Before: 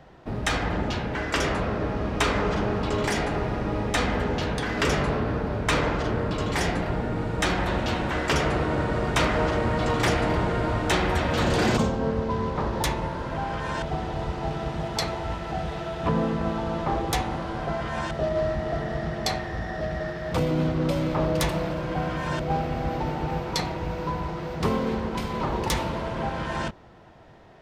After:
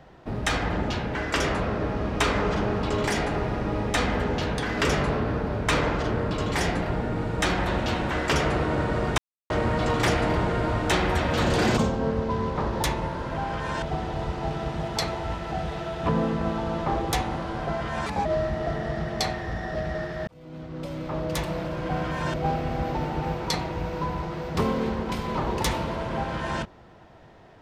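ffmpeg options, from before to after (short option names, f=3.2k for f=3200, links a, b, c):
-filter_complex "[0:a]asplit=6[a][b][c][d][e][f];[a]atrim=end=9.18,asetpts=PTS-STARTPTS,afade=t=out:st=9.176:d=0.004:c=hsin[g];[b]atrim=start=9.18:end=9.5,asetpts=PTS-STARTPTS,volume=0[h];[c]atrim=start=9.5:end=18.064,asetpts=PTS-STARTPTS,afade=t=in:d=0.004:c=hsin[i];[d]atrim=start=18.06:end=18.31,asetpts=PTS-STARTPTS,asetrate=56889,aresample=44100[j];[e]atrim=start=18.306:end=20.33,asetpts=PTS-STARTPTS,afade=t=out:st=2.02:d=0.004:c=hsin[k];[f]atrim=start=20.33,asetpts=PTS-STARTPTS,afade=t=in:d=1.72[l];[g][h][i]concat=n=3:v=0:a=1[m];[m][j]acrossfade=d=0.004:c1=hsin:c2=hsin[n];[k][l]concat=n=2:v=0:a=1[o];[n][o]acrossfade=d=0.004:c1=hsin:c2=hsin"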